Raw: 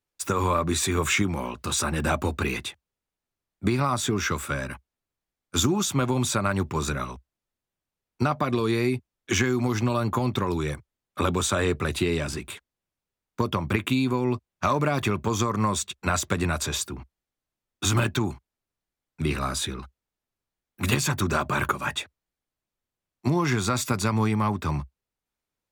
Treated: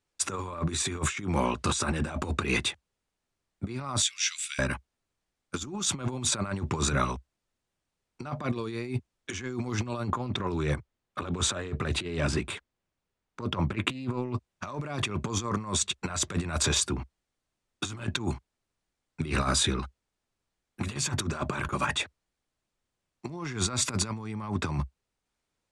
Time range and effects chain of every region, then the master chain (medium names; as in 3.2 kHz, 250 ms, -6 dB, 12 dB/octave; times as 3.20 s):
4.02–4.59 s: inverse Chebyshev high-pass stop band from 740 Hz, stop band 60 dB + peaking EQ 12 kHz -3.5 dB 0.25 oct
10.11–14.35 s: treble shelf 4.3 kHz -7 dB + loudspeaker Doppler distortion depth 0.19 ms
whole clip: steep low-pass 9.8 kHz 36 dB/octave; compressor with a negative ratio -29 dBFS, ratio -0.5